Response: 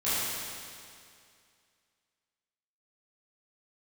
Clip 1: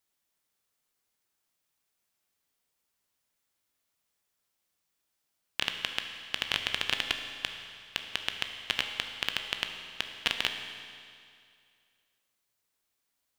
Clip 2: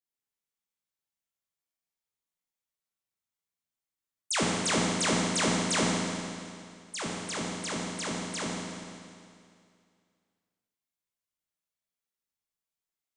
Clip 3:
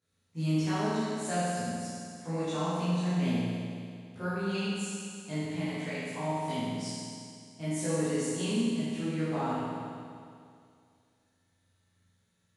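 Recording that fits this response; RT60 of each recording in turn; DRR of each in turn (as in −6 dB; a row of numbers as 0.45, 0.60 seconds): 3; 2.3, 2.3, 2.3 seconds; 5.0, −4.5, −14.0 decibels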